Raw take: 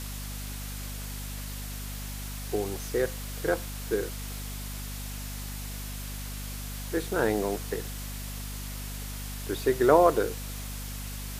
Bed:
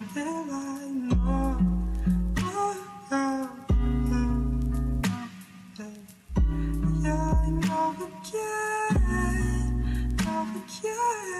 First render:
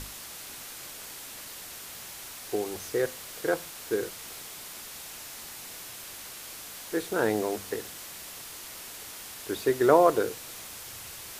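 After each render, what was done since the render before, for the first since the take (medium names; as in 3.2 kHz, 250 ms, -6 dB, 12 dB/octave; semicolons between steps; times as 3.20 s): hum notches 50/100/150/200/250 Hz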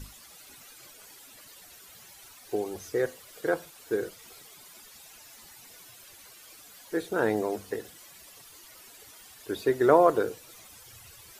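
noise reduction 13 dB, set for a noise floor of -43 dBFS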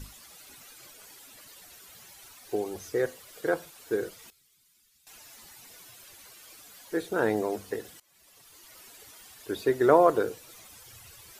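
4.30–5.07 s: amplifier tone stack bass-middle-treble 6-0-2; 8.00–8.80 s: fade in, from -22 dB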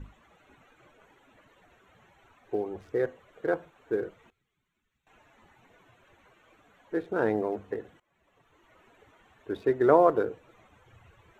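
local Wiener filter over 9 samples; low-pass 1.9 kHz 6 dB/octave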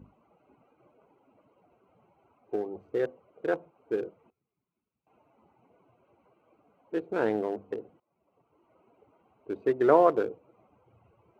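local Wiener filter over 25 samples; Bessel high-pass 160 Hz, order 2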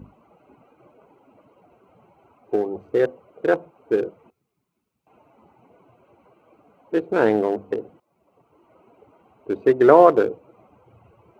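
trim +9.5 dB; peak limiter -1 dBFS, peak gain reduction 2.5 dB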